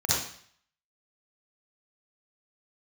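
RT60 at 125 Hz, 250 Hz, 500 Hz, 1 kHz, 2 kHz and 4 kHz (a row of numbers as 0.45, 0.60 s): 0.55, 0.55, 0.55, 0.60, 0.60, 0.60 s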